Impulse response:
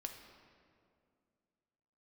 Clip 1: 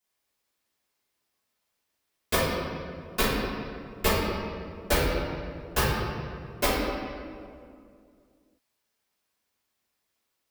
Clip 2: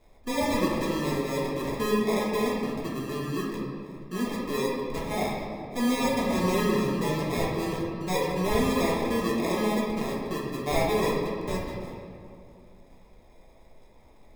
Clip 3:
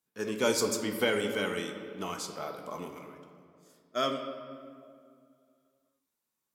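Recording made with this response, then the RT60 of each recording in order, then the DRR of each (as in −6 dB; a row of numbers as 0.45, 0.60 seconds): 3; 2.3, 2.3, 2.3 seconds; −12.5, −5.0, 3.5 decibels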